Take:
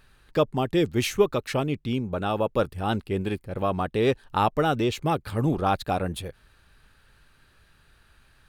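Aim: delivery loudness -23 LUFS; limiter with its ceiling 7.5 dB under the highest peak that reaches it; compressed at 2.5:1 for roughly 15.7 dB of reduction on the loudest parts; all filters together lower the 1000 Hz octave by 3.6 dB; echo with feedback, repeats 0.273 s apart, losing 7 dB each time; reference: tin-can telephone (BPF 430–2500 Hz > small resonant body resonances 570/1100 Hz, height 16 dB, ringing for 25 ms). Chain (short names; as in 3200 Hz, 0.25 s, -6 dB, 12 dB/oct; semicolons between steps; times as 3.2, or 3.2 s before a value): bell 1000 Hz -4.5 dB; compressor 2.5:1, threshold -40 dBFS; limiter -31 dBFS; BPF 430–2500 Hz; feedback echo 0.273 s, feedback 45%, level -7 dB; small resonant body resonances 570/1100 Hz, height 16 dB, ringing for 25 ms; gain +13.5 dB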